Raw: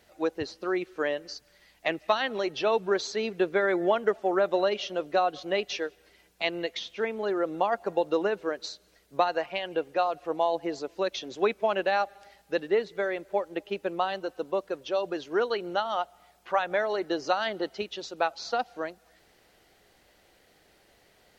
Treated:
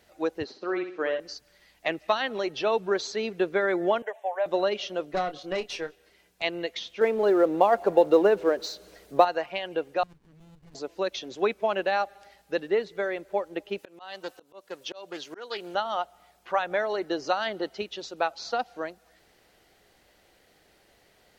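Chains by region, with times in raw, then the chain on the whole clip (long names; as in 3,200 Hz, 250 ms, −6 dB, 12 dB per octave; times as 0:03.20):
0:00.44–0:01.20: high-pass filter 190 Hz + high-frequency loss of the air 120 metres + flutter between parallel walls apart 10.9 metres, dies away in 0.46 s
0:04.02–0:04.46: high-pass filter 420 Hz 24 dB per octave + phaser with its sweep stopped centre 1,300 Hz, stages 6
0:05.05–0:06.42: tube saturation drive 21 dB, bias 0.5 + double-tracking delay 27 ms −10 dB
0:07.01–0:09.25: mu-law and A-law mismatch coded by mu + parametric band 480 Hz +7 dB 2 octaves
0:10.03–0:10.75: inverse Chebyshev band-stop filter 370–1,100 Hz + downward compressor 2 to 1, threshold −52 dBFS + windowed peak hold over 65 samples
0:13.78–0:15.75: spectral tilt +2.5 dB per octave + volume swells 304 ms + highs frequency-modulated by the lows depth 0.11 ms
whole clip: no processing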